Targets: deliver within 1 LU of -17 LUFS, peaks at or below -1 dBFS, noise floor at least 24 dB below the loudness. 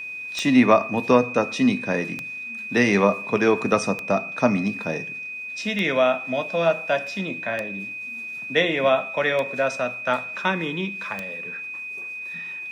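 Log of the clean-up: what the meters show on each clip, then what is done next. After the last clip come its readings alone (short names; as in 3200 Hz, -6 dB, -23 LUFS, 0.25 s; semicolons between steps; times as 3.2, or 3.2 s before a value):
clicks 7; steady tone 2500 Hz; tone level -31 dBFS; loudness -23.0 LUFS; peak -4.5 dBFS; loudness target -17.0 LUFS
-> de-click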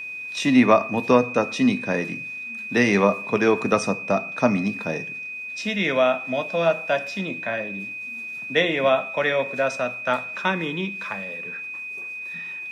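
clicks 0; steady tone 2500 Hz; tone level -31 dBFS
-> notch 2500 Hz, Q 30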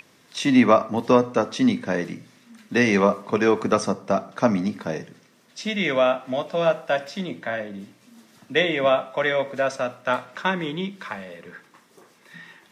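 steady tone none; loudness -22.5 LUFS; peak -4.5 dBFS; loudness target -17.0 LUFS
-> gain +5.5 dB; limiter -1 dBFS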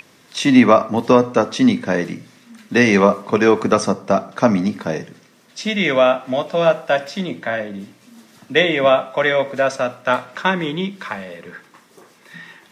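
loudness -17.5 LUFS; peak -1.0 dBFS; noise floor -52 dBFS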